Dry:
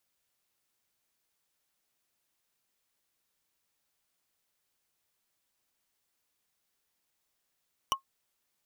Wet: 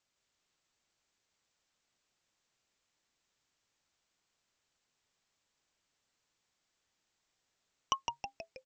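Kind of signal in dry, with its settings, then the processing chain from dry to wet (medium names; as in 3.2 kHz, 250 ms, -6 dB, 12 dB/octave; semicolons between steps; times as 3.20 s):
wood hit, lowest mode 1.08 kHz, decay 0.11 s, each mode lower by 1.5 dB, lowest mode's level -20.5 dB
steep low-pass 8 kHz 96 dB/octave; frequency-shifting echo 160 ms, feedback 56%, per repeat -140 Hz, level -5 dB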